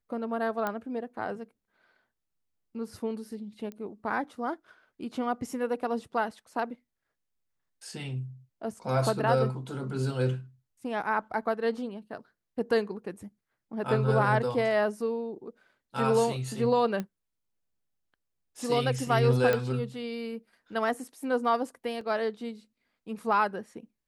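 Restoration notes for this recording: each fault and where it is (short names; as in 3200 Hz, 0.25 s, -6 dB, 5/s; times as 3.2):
0.67 pop -17 dBFS
3.72 pop -28 dBFS
17 pop -20 dBFS
19.53 pop -14 dBFS
22.01 gap 2.8 ms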